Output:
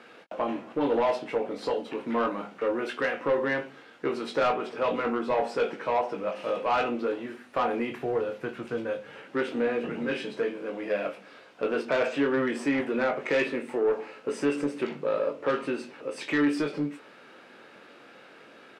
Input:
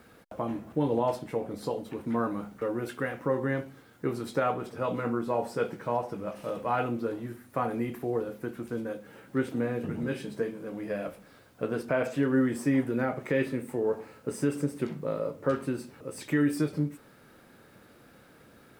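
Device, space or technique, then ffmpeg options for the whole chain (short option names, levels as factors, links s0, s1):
intercom: -filter_complex "[0:a]asettb=1/sr,asplit=3[s0][s1][s2];[s0]atrim=end=7.914[s3];[s1]atrim=start=7.91:end=9.21,asetpts=PTS-STARTPTS,afade=t=in:d=0.004:c=qsin,afade=t=out:st=1.296:d=0.004:c=qsin,lowshelf=f=170:t=q:w=1.5:g=10[s4];[s2]atrim=start=9.206[s5];[s3][s4]acrossfade=d=0.004:c1=hsin:c2=qsin[s6];[s6][s5]acrossfade=d=0.004:c1=qsin:c2=hsin,highpass=340,lowpass=4900,equalizer=f=2700:t=o:w=0.51:g=6,asoftclip=type=tanh:threshold=0.0531,asplit=2[s7][s8];[s8]adelay=21,volume=0.398[s9];[s7][s9]amix=inputs=2:normalize=0,volume=2"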